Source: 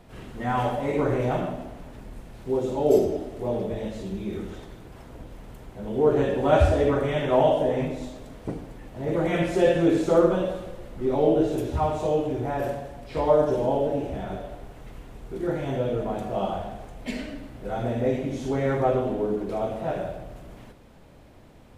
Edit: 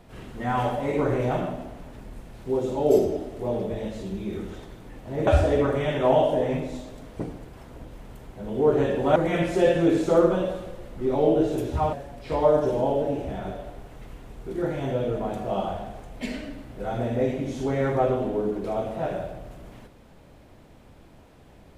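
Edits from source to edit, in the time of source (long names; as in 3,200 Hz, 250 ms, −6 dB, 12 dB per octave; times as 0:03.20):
0:04.84–0:06.55: swap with 0:08.73–0:09.16
0:11.93–0:12.78: remove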